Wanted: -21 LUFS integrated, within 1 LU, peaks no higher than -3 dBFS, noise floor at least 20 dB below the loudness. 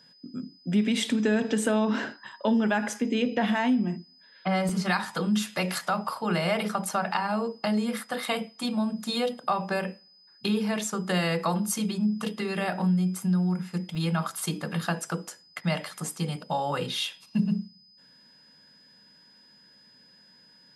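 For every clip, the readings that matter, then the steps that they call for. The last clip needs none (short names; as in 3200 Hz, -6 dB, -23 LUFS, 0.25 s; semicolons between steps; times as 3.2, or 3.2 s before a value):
dropouts 2; longest dropout 2.7 ms; steady tone 5000 Hz; tone level -55 dBFS; loudness -28.0 LUFS; peak -12.5 dBFS; loudness target -21.0 LUFS
-> interpolate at 4.69/13.95, 2.7 ms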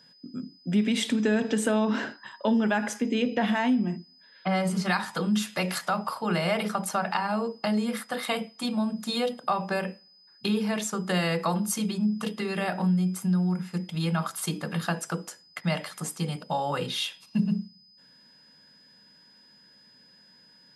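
dropouts 0; steady tone 5000 Hz; tone level -55 dBFS
-> notch 5000 Hz, Q 30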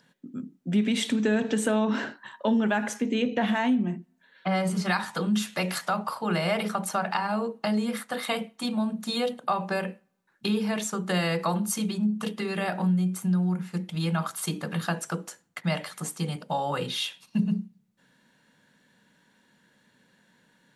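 steady tone none; loudness -28.0 LUFS; peak -12.5 dBFS; loudness target -21.0 LUFS
-> gain +7 dB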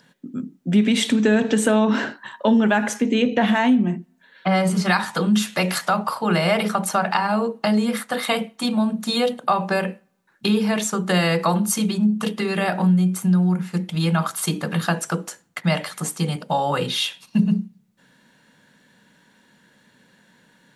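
loudness -21.0 LUFS; peak -5.5 dBFS; noise floor -59 dBFS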